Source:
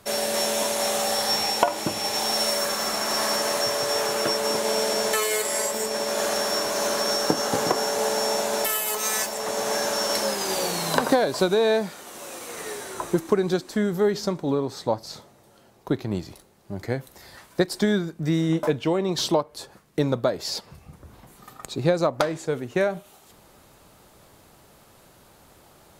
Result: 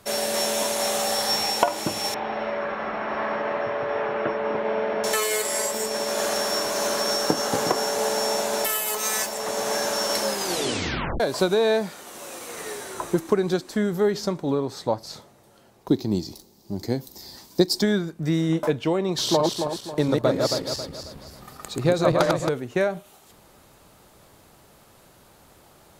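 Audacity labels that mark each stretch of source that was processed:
2.140000	5.040000	low-pass filter 2,400 Hz 24 dB per octave
10.460000	10.460000	tape stop 0.74 s
15.880000	17.820000	drawn EQ curve 140 Hz 0 dB, 230 Hz +6 dB, 340 Hz +5 dB, 580 Hz −4 dB, 890 Hz 0 dB, 1,400 Hz −10 dB, 2,800 Hz −4 dB, 4,900 Hz +11 dB, 10,000 Hz 0 dB, 15,000 Hz +11 dB
19.130000	22.490000	feedback delay that plays each chunk backwards 136 ms, feedback 61%, level −2 dB

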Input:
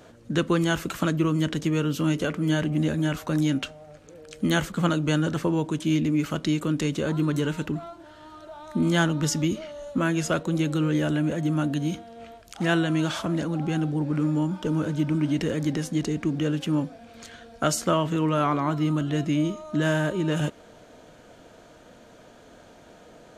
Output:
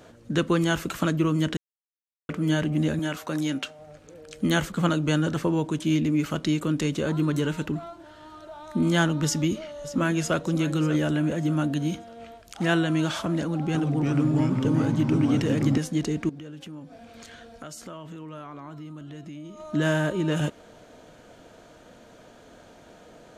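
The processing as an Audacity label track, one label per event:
1.570000	2.290000	silence
2.990000	3.790000	high-pass filter 320 Hz 6 dB per octave
9.250000	10.370000	delay throw 590 ms, feedback 35%, level −14 dB
13.420000	15.780000	delay with pitch and tempo change per echo 318 ms, each echo −2 semitones, echoes 3
16.290000	19.600000	downward compressor 4 to 1, threshold −40 dBFS

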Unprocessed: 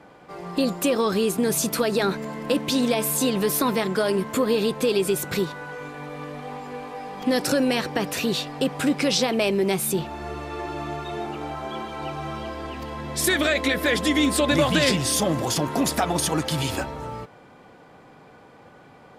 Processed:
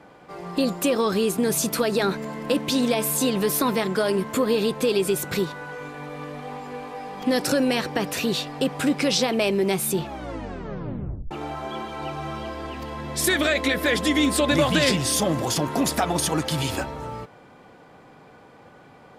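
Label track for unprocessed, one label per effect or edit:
10.030000	10.030000	tape stop 1.28 s

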